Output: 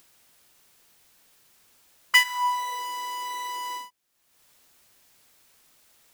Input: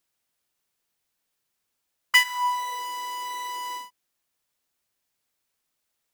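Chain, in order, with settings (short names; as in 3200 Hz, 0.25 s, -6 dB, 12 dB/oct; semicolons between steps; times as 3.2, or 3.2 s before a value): upward compressor, threshold -44 dBFS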